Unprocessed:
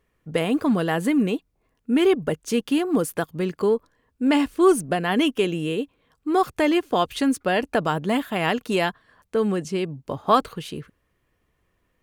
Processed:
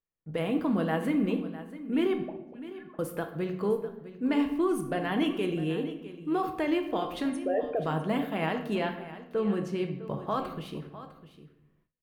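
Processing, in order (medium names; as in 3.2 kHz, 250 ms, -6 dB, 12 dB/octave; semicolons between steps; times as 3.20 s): 7.30–7.80 s: resonances exaggerated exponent 3; peaking EQ 7.5 kHz -10 dB 1.5 oct; peak limiter -14 dBFS, peak gain reduction 9 dB; 2.22–2.99 s: auto-wah 240–1700 Hz, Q 14, up, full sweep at -18.5 dBFS; 8.75–9.52 s: distance through air 63 m; delay 654 ms -15 dB; simulated room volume 250 m³, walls mixed, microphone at 0.63 m; gate with hold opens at -53 dBFS; trim -7 dB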